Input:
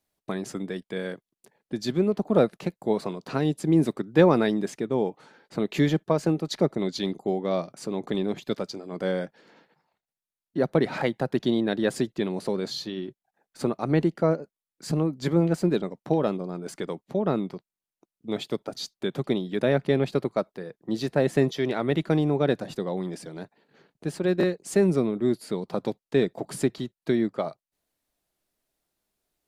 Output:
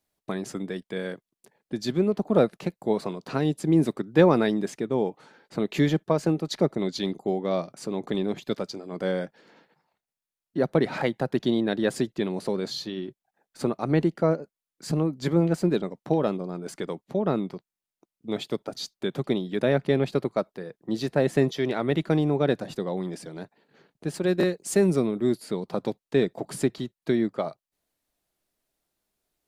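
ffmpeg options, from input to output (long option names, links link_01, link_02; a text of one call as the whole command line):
ffmpeg -i in.wav -filter_complex "[0:a]asettb=1/sr,asplit=3[link_01][link_02][link_03];[link_01]atrim=end=24.144[link_04];[link_02]atrim=start=24.14:end=25.4,asetpts=PTS-STARTPTS,afade=type=in:duration=0.004:curve=qsin,afade=type=out:start_time=1.256:duration=0.004:curve=qsin,highshelf=frequency=5100:gain=6.5[link_05];[link_03]atrim=start=25.396[link_06];[link_04][link_05]acrossfade=duration=0.004:curve1=hsin:curve2=qsin[link_07];[link_07][link_06]acrossfade=duration=0.004:curve1=qsin:curve2=hsin" out.wav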